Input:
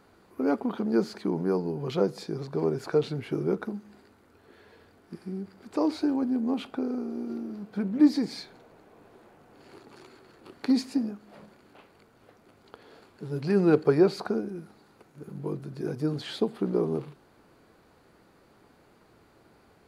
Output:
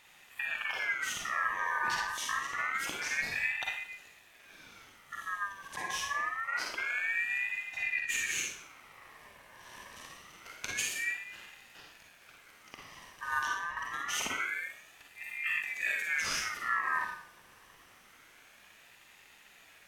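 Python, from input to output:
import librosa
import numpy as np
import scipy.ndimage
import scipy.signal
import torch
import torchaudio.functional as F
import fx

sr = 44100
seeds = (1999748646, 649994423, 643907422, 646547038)

y = fx.over_compress(x, sr, threshold_db=-30.0, ratio=-1.0)
y = fx.high_shelf(y, sr, hz=3500.0, db=12.0)
y = fx.rev_schroeder(y, sr, rt60_s=0.52, comb_ms=38, drr_db=0.0)
y = fx.ring_lfo(y, sr, carrier_hz=1800.0, swing_pct=25, hz=0.26)
y = F.gain(torch.from_numpy(y), -4.0).numpy()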